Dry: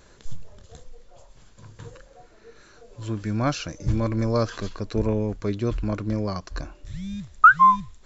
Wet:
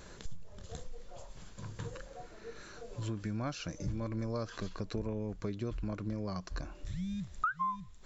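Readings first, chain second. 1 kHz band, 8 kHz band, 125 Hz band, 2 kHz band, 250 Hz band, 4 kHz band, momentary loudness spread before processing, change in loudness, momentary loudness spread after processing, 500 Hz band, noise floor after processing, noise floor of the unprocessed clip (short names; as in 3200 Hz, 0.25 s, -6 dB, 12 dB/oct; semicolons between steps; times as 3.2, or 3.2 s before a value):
-19.0 dB, n/a, -11.0 dB, -20.5 dB, -10.5 dB, -9.5 dB, 20 LU, -17.0 dB, 15 LU, -12.5 dB, -53 dBFS, -53 dBFS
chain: bell 180 Hz +6 dB 0.22 oct; compressor 4:1, threshold -38 dBFS, peak gain reduction 24 dB; gain +1.5 dB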